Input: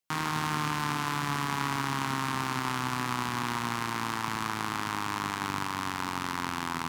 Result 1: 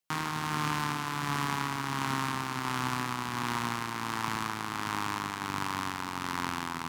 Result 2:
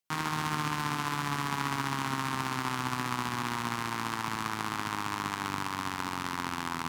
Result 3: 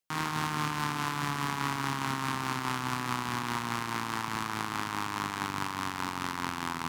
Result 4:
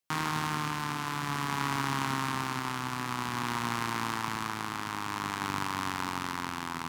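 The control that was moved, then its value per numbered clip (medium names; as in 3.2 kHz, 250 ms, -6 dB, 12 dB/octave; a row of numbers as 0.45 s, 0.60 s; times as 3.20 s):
tremolo, rate: 1.4 Hz, 15 Hz, 4.8 Hz, 0.52 Hz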